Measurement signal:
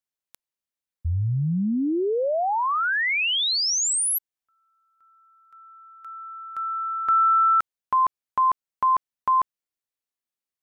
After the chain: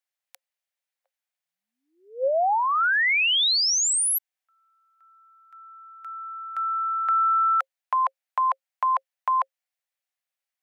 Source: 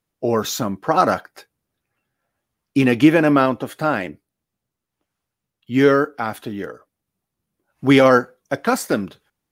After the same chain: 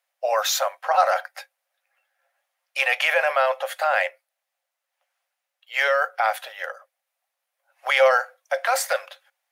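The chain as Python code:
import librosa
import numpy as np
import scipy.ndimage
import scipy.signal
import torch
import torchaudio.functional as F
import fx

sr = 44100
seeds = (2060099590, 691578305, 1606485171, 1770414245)

p1 = scipy.signal.sosfilt(scipy.signal.cheby1(6, 6, 520.0, 'highpass', fs=sr, output='sos'), x)
p2 = fx.over_compress(p1, sr, threshold_db=-27.0, ratio=-0.5)
y = p1 + (p2 * librosa.db_to_amplitude(-2.0))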